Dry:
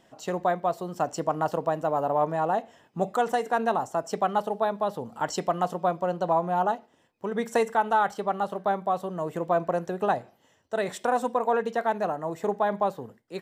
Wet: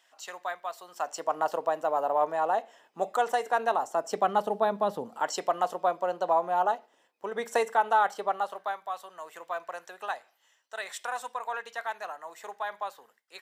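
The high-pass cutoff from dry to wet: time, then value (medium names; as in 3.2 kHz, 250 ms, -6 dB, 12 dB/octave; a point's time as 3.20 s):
0.79 s 1.3 kHz
1.41 s 500 Hz
3.71 s 500 Hz
4.85 s 120 Hz
5.24 s 470 Hz
8.26 s 470 Hz
8.79 s 1.3 kHz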